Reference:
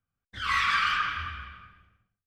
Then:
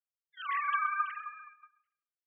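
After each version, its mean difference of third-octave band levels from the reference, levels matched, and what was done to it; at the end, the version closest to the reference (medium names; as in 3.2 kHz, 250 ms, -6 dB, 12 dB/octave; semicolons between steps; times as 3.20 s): 13.5 dB: formants replaced by sine waves; gate -48 dBFS, range -10 dB; delay 132 ms -19 dB; trim -6 dB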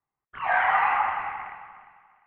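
9.5 dB: rattle on loud lows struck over -44 dBFS, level -32 dBFS; on a send: thinning echo 350 ms, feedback 29%, high-pass 170 Hz, level -15 dB; on the sum: mistuned SSB -380 Hz 270–2600 Hz; trim +4 dB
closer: second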